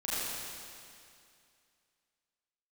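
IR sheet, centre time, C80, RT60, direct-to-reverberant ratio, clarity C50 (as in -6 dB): 191 ms, -4.5 dB, 2.4 s, -10.5 dB, -6.0 dB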